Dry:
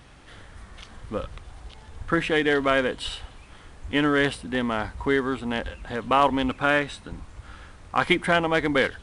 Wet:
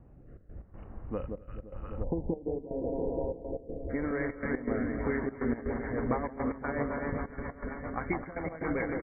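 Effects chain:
low-pass that shuts in the quiet parts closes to 500 Hz, open at −17.5 dBFS
repeating echo 255 ms, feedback 44%, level −11 dB
downward compressor, threshold −27 dBFS, peak gain reduction 12.5 dB
delay that swaps between a low-pass and a high-pass 173 ms, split 1,000 Hz, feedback 88%, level −3.5 dB
gate pattern "xxx.x.xx" 122 BPM −12 dB
linear-phase brick-wall low-pass 3,000 Hz, from 0:02.02 1,000 Hz, from 0:03.89 2,300 Hz
dynamic equaliser 1,400 Hz, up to −5 dB, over −45 dBFS, Q 1.6
rotating-speaker cabinet horn 0.85 Hz, later 7.5 Hz, at 0:04.81

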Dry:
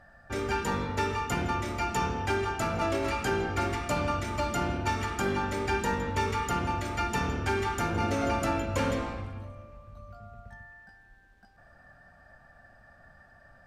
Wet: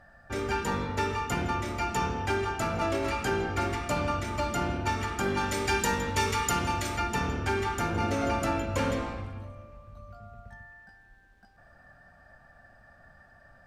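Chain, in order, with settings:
0:05.37–0:06.97: high-shelf EQ 2,900 Hz +11 dB

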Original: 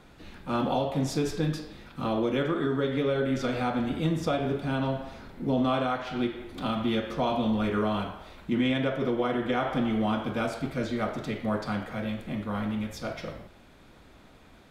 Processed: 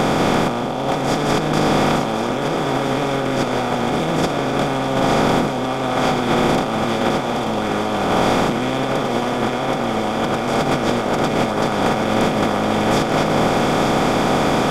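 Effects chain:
compressor on every frequency bin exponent 0.2
parametric band 810 Hz +5.5 dB 0.31 octaves
compressor whose output falls as the input rises −21 dBFS, ratio −0.5
feedback echo with a high-pass in the loop 885 ms, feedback 74%, level −9 dB
level +3 dB

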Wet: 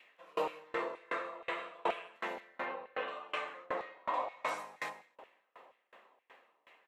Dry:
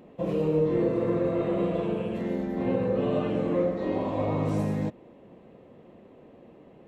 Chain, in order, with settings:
0:03.66–0:04.14: high-shelf EQ 2,700 Hz −11.5 dB
auto-filter high-pass saw down 2.1 Hz 840–2,300 Hz
0:02.40–0:03.08: high-frequency loss of the air 170 metres
loudspeakers that aren't time-aligned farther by 57 metres −11 dB, 88 metres −11 dB
tremolo with a ramp in dB decaying 2.7 Hz, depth 31 dB
level +7 dB

